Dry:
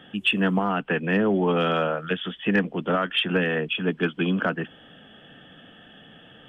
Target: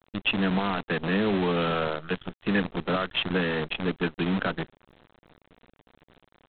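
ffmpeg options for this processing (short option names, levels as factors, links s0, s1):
-af "adynamicequalizer=threshold=0.00562:dfrequency=120:dqfactor=2.2:tfrequency=120:tqfactor=2.2:attack=5:release=100:ratio=0.375:range=3.5:mode=boostabove:tftype=bell,adynamicsmooth=sensitivity=3:basefreq=670,aresample=8000,acrusher=bits=5:dc=4:mix=0:aa=0.000001,aresample=44100,volume=0.631"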